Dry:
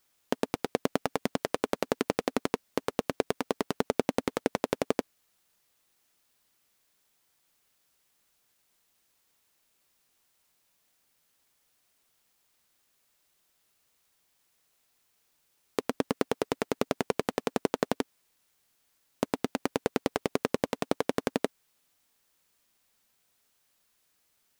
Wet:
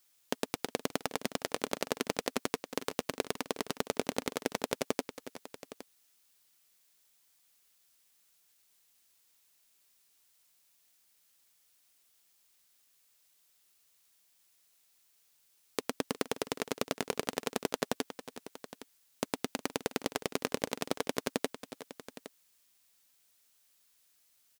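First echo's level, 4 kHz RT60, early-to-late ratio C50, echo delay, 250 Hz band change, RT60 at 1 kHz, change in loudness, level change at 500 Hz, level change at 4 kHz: -16.0 dB, none, none, 0.362 s, -6.0 dB, none, -4.5 dB, -5.5 dB, +1.5 dB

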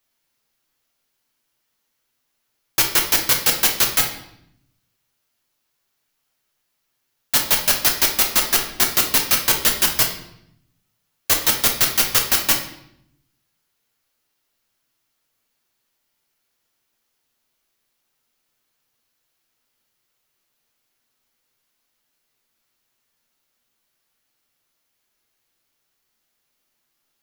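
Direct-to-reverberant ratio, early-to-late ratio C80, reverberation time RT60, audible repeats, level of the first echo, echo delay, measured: 1.0 dB, 11.0 dB, 0.75 s, none, none, none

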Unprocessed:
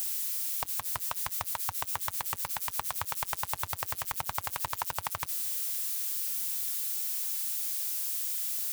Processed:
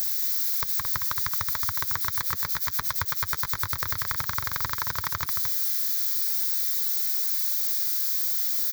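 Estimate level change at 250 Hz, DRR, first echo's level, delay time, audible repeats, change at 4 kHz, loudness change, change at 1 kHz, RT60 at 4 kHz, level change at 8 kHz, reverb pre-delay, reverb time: +8.0 dB, none, -6.0 dB, 0.222 s, 1, +7.0 dB, +7.0 dB, +2.5 dB, none, +1.0 dB, none, none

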